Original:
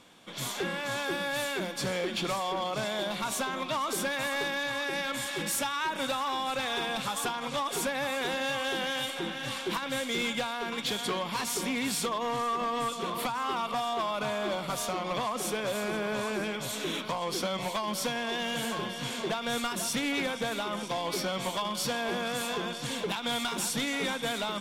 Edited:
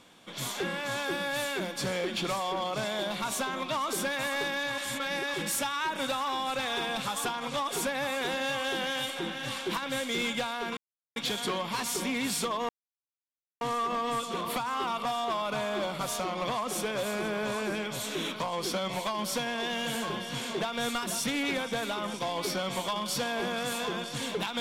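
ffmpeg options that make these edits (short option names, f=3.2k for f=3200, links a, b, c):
-filter_complex "[0:a]asplit=5[a][b][c][d][e];[a]atrim=end=4.782[f];[b]atrim=start=4.778:end=5.342,asetpts=PTS-STARTPTS,areverse[g];[c]atrim=start=5.338:end=10.77,asetpts=PTS-STARTPTS,afade=t=out:st=5.428:d=0.004:c=hsin,apad=pad_dur=0.39[h];[d]atrim=start=10.77:end=12.3,asetpts=PTS-STARTPTS,afade=t=in:d=0.004:c=hsin,afade=t=out:st=1.526:d=0.004:c=hsin,apad=pad_dur=0.92[i];[e]atrim=start=12.3,asetpts=PTS-STARTPTS,afade=t=in:d=0.004:c=hsin[j];[f][g]acrossfade=d=0.004:c1=hsin:c2=hsin[k];[h][i][j]concat=n=3:v=0:a=1[l];[k][l]acrossfade=d=0.004:c1=hsin:c2=hsin"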